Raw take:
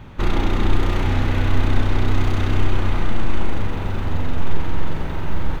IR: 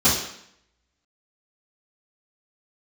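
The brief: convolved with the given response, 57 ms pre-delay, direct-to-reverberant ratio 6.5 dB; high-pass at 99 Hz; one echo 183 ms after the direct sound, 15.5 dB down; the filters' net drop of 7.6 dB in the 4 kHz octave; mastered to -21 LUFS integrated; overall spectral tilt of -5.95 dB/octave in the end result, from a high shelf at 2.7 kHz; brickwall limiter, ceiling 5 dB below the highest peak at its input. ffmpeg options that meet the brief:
-filter_complex "[0:a]highpass=99,highshelf=f=2700:g=-4,equalizer=f=4000:t=o:g=-7,alimiter=limit=0.141:level=0:latency=1,aecho=1:1:183:0.168,asplit=2[s0][s1];[1:a]atrim=start_sample=2205,adelay=57[s2];[s1][s2]afir=irnorm=-1:irlink=0,volume=0.0596[s3];[s0][s3]amix=inputs=2:normalize=0,volume=1.78"

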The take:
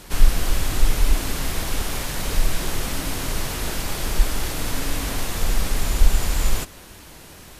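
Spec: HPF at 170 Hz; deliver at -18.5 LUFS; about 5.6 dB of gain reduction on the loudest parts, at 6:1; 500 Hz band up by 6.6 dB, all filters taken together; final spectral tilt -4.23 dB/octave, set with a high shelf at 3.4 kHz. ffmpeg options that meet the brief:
-af "highpass=170,equalizer=f=500:t=o:g=8.5,highshelf=f=3400:g=-9,acompressor=threshold=0.0282:ratio=6,volume=6.68"

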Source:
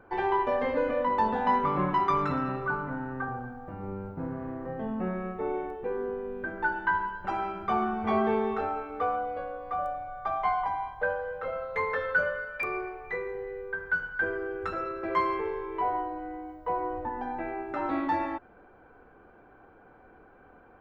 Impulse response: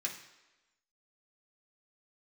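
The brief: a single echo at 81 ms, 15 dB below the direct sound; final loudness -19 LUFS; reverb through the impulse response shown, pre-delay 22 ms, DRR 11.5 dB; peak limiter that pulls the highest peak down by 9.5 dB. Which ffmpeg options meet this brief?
-filter_complex "[0:a]alimiter=limit=0.075:level=0:latency=1,aecho=1:1:81:0.178,asplit=2[s0][s1];[1:a]atrim=start_sample=2205,adelay=22[s2];[s1][s2]afir=irnorm=-1:irlink=0,volume=0.224[s3];[s0][s3]amix=inputs=2:normalize=0,volume=4.47"

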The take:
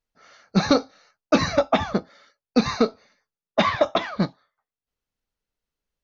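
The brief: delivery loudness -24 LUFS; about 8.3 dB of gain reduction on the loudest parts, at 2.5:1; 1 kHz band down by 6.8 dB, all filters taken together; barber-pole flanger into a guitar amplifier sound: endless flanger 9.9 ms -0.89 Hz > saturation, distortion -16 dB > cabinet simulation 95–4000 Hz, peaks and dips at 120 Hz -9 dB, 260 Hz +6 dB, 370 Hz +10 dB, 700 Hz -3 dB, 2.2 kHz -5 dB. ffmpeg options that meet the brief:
-filter_complex "[0:a]equalizer=f=1000:t=o:g=-8,acompressor=threshold=0.0447:ratio=2.5,asplit=2[s0][s1];[s1]adelay=9.9,afreqshift=-0.89[s2];[s0][s2]amix=inputs=2:normalize=1,asoftclip=threshold=0.0708,highpass=95,equalizer=f=120:t=q:w=4:g=-9,equalizer=f=260:t=q:w=4:g=6,equalizer=f=370:t=q:w=4:g=10,equalizer=f=700:t=q:w=4:g=-3,equalizer=f=2200:t=q:w=4:g=-5,lowpass=f=4000:w=0.5412,lowpass=f=4000:w=1.3066,volume=3.16"

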